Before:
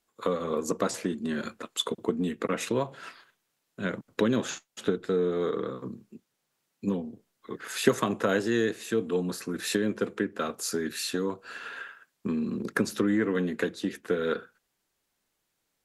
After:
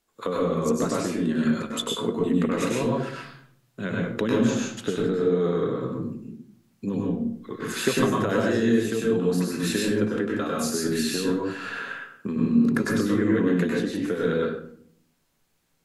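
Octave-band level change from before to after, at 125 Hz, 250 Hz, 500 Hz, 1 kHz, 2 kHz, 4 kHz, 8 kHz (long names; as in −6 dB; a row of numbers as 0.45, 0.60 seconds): +8.0, +6.5, +4.0, +3.5, +3.0, +3.0, +3.0 decibels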